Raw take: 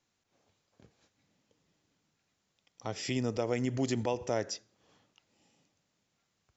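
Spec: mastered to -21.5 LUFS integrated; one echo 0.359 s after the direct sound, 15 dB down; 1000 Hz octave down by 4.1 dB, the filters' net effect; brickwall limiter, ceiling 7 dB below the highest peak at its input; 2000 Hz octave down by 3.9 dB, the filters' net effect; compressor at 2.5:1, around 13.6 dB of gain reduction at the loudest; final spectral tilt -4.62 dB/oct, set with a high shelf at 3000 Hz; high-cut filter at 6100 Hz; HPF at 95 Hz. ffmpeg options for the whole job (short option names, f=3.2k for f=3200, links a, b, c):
-af "highpass=95,lowpass=6.1k,equalizer=f=1k:t=o:g=-5.5,equalizer=f=2k:t=o:g=-5,highshelf=f=3k:g=4,acompressor=threshold=-49dB:ratio=2.5,alimiter=level_in=15.5dB:limit=-24dB:level=0:latency=1,volume=-15.5dB,aecho=1:1:359:0.178,volume=28.5dB"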